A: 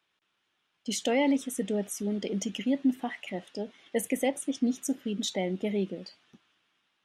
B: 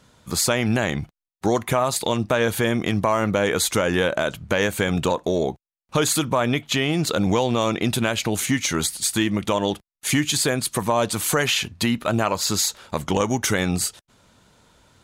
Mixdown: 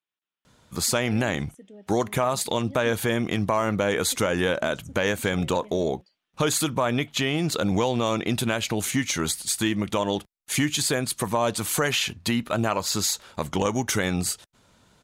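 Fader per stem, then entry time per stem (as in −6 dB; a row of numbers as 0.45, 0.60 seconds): −17.0, −3.0 decibels; 0.00, 0.45 seconds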